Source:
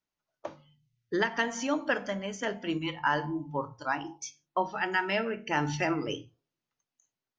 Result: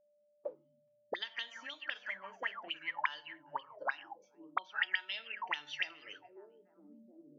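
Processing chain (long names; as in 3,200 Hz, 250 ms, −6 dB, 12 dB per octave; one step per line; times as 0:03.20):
echo through a band-pass that steps 425 ms, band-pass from 3,300 Hz, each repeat −1.4 octaves, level −12 dB
envelope filter 210–3,600 Hz, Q 14, up, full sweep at −26 dBFS
steady tone 590 Hz −80 dBFS
level +10 dB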